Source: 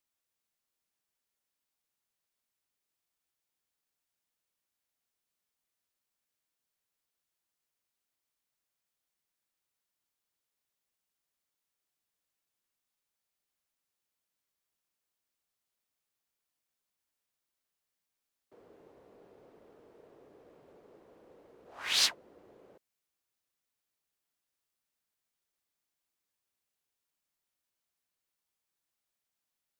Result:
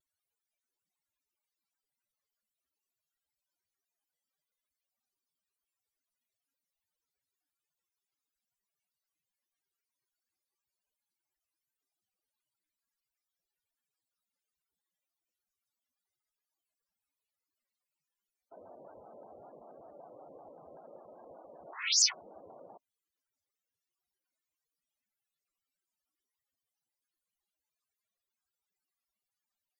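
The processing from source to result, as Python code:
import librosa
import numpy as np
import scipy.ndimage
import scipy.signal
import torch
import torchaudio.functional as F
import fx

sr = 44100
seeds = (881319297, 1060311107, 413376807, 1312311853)

y = fx.formant_shift(x, sr, semitones=5)
y = fx.spec_topn(y, sr, count=32)
y = fx.vibrato_shape(y, sr, shape='square', rate_hz=5.2, depth_cents=160.0)
y = F.gain(torch.from_numpy(y), 6.5).numpy()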